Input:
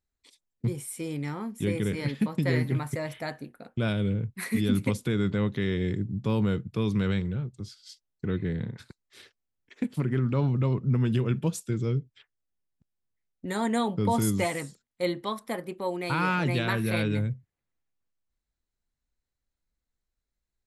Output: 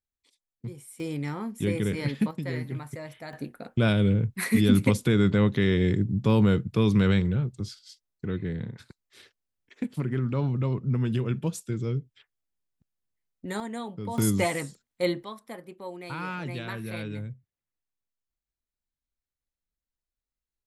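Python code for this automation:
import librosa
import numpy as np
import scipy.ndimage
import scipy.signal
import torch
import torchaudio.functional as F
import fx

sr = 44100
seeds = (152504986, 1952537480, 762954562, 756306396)

y = fx.gain(x, sr, db=fx.steps((0.0, -9.0), (1.0, 1.0), (2.31, -6.5), (3.33, 5.0), (7.79, -1.5), (13.6, -9.0), (14.18, 2.0), (15.23, -8.0)))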